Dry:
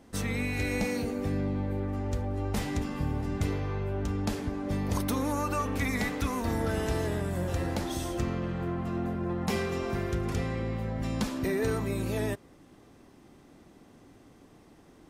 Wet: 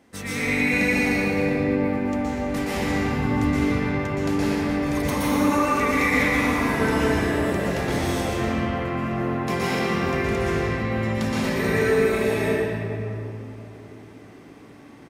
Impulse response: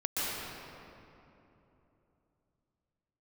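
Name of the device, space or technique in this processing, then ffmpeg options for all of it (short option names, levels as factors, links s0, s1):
PA in a hall: -filter_complex "[0:a]highpass=f=130:p=1,equalizer=f=2100:t=o:w=0.82:g=6,aecho=1:1:117:0.422[s0];[1:a]atrim=start_sample=2205[s1];[s0][s1]afir=irnorm=-1:irlink=0"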